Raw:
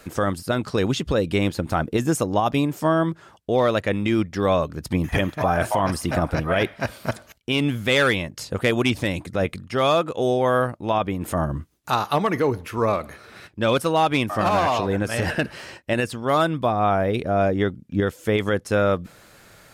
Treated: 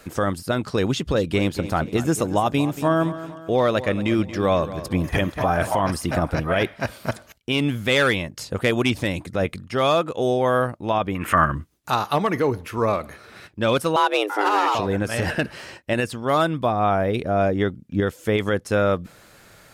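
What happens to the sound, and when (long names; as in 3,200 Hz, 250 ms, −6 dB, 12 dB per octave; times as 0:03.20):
0:00.91–0:05.75: repeating echo 230 ms, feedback 46%, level −14 dB
0:11.15–0:11.55: flat-topped bell 1,800 Hz +15.5 dB
0:13.96–0:14.75: frequency shifter +200 Hz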